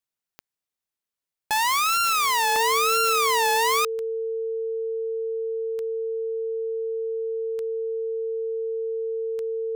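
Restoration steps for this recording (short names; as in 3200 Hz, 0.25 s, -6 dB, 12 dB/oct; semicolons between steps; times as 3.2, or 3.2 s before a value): de-click; notch 450 Hz, Q 30; interpolate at 0.77/2.56, 1.3 ms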